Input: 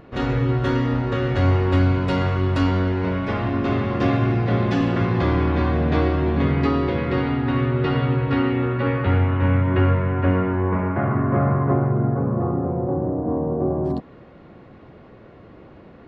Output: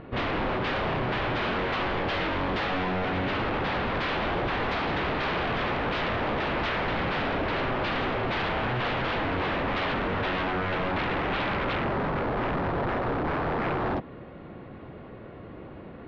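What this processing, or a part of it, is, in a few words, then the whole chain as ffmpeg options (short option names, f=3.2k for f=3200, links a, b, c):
synthesiser wavefolder: -af "aeval=exprs='0.0562*(abs(mod(val(0)/0.0562+3,4)-2)-1)':c=same,lowpass=f=3.9k:w=0.5412,lowpass=f=3.9k:w=1.3066,volume=2dB"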